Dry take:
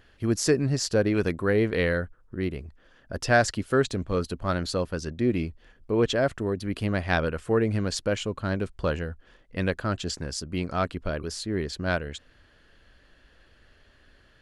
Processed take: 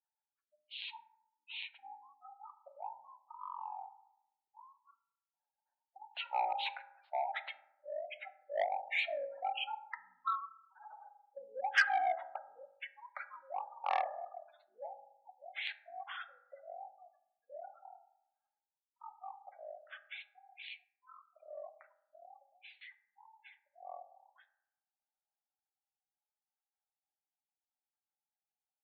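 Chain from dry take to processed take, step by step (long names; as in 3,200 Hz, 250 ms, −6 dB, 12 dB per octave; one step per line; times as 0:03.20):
source passing by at 0:05.28, 15 m/s, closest 4.5 metres
in parallel at −11.5 dB: centre clipping without the shift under −32.5 dBFS
on the sum: wrong playback speed 15 ips tape played at 7.5 ips
high-frequency loss of the air 280 metres
noise gate with hold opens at −53 dBFS
gate on every frequency bin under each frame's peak −20 dB strong
Chebyshev band-pass filter 570–4,300 Hz, order 5
high-shelf EQ 2,500 Hz +10 dB
on a send at −9.5 dB: convolution reverb RT60 0.85 s, pre-delay 3 ms
on the sum: saturating transformer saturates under 1,900 Hz
level +9 dB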